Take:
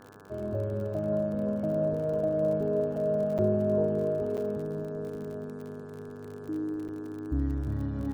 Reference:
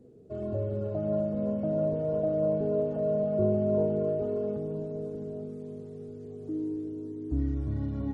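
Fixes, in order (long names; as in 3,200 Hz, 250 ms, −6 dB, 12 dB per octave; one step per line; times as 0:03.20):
click removal
hum removal 100.7 Hz, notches 17
repair the gap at 0:03.38/0:04.37/0:06.88, 7.7 ms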